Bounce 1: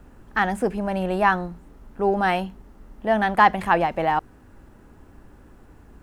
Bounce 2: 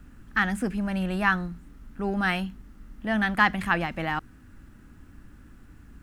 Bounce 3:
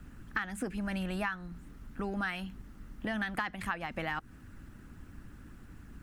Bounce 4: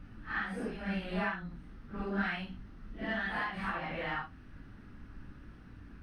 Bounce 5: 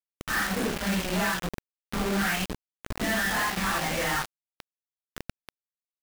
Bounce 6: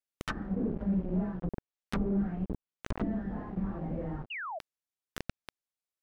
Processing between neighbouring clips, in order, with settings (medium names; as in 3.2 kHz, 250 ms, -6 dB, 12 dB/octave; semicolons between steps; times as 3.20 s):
high-order bell 610 Hz -11 dB
harmonic-percussive split percussive +7 dB; compression 10:1, threshold -27 dBFS, peak gain reduction 16.5 dB; trim -4 dB
phase randomisation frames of 200 ms; Savitzky-Golay filter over 15 samples
companded quantiser 2-bit; trim +1 dB
low-pass that closes with the level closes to 340 Hz, closed at -26 dBFS; painted sound fall, 4.30–4.59 s, 590–3000 Hz -38 dBFS